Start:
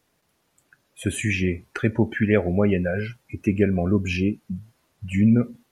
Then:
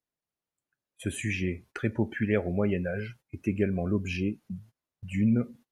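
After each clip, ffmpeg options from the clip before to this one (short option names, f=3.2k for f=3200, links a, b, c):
-af "agate=range=-18dB:threshold=-43dB:ratio=16:detection=peak,volume=-7dB"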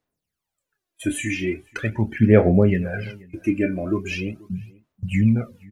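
-filter_complex "[0:a]asplit=2[a][b];[b]adelay=27,volume=-9.5dB[c];[a][c]amix=inputs=2:normalize=0,aphaser=in_gain=1:out_gain=1:delay=3.4:decay=0.71:speed=0.41:type=sinusoidal,asplit=2[d][e];[e]adelay=484,volume=-24dB,highshelf=f=4k:g=-10.9[f];[d][f]amix=inputs=2:normalize=0,volume=3.5dB"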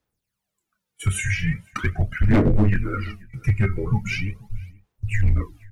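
-af "afreqshift=-200,asoftclip=type=hard:threshold=-13.5dB,volume=2dB"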